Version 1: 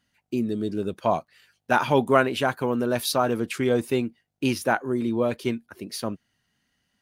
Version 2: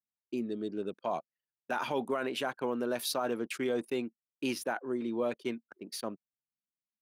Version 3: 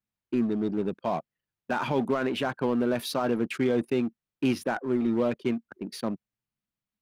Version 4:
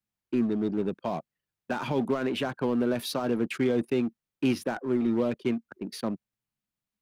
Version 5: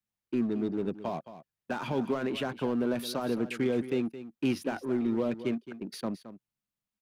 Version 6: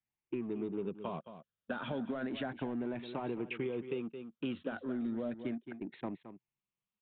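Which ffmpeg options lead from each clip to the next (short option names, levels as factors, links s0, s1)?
-af "anlmdn=0.631,highpass=240,alimiter=limit=0.158:level=0:latency=1:release=27,volume=0.473"
-filter_complex "[0:a]bass=f=250:g=11,treble=f=4000:g=-9,asplit=2[s0][s1];[s1]aeval=exprs='0.0158*(abs(mod(val(0)/0.0158+3,4)-2)-1)':c=same,volume=0.282[s2];[s0][s2]amix=inputs=2:normalize=0,volume=1.58"
-filter_complex "[0:a]acrossover=split=480|3000[s0][s1][s2];[s1]acompressor=threshold=0.0282:ratio=6[s3];[s0][s3][s2]amix=inputs=3:normalize=0"
-af "aecho=1:1:219:0.211,volume=0.708"
-af "afftfilt=real='re*pow(10,8/40*sin(2*PI*(0.74*log(max(b,1)*sr/1024/100)/log(2)-(0.33)*(pts-256)/sr)))':imag='im*pow(10,8/40*sin(2*PI*(0.74*log(max(b,1)*sr/1024/100)/log(2)-(0.33)*(pts-256)/sr)))':win_size=1024:overlap=0.75,acompressor=threshold=0.0316:ratio=6,aresample=8000,aresample=44100,volume=0.668"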